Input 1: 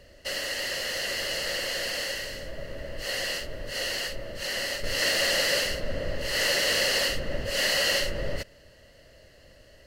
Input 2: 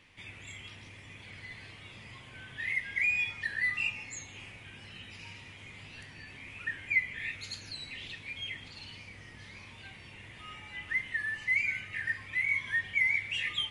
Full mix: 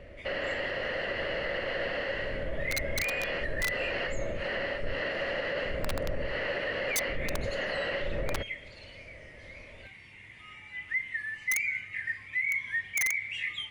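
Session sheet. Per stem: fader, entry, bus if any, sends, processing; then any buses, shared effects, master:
+1.5 dB, 0.00 s, no send, Bessel low-pass filter 1,700 Hz, order 4; speech leveller within 4 dB 0.5 s
−6.0 dB, 0.00 s, no send, parametric band 2,100 Hz +10.5 dB 0.38 octaves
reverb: not used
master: wrap-around overflow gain 18 dB; brickwall limiter −23 dBFS, peak gain reduction 5 dB

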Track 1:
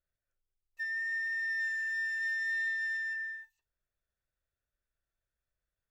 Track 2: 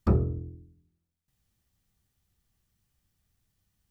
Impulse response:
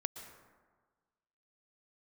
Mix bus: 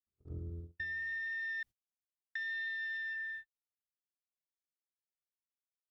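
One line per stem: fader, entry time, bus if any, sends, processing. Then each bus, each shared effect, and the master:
0.0 dB, 0.00 s, muted 0:01.63–0:02.35, no send, no echo send, low-pass with resonance 3,600 Hz, resonance Q 4.3
−10.0 dB, 0.00 s, no send, echo send −3.5 dB, compressor whose output falls as the input rises −35 dBFS, ratio −1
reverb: not used
echo: repeating echo 106 ms, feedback 58%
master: noise gate −42 dBFS, range −45 dB; downward compressor 3 to 1, threshold −40 dBFS, peak gain reduction 8.5 dB

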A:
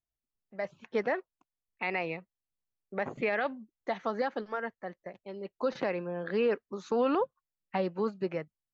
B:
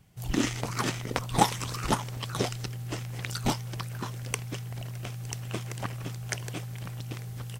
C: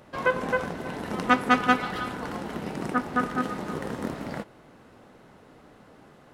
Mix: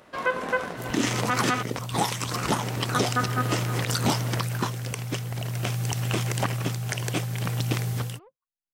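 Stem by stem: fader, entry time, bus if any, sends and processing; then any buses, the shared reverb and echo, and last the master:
−10.0 dB, 1.05 s, no send, downward compressor 12 to 1, threshold −38 dBFS, peak gain reduction 15 dB; soft clipping −36 dBFS, distortion −15 dB
−0.5 dB, 0.60 s, no send, high-pass filter 110 Hz; automatic gain control gain up to 14 dB
+2.5 dB, 0.00 s, muted 0:01.63–0:02.31, no send, low-shelf EQ 330 Hz −10 dB; notch filter 840 Hz, Q 13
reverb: not used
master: brickwall limiter −12.5 dBFS, peak gain reduction 11 dB

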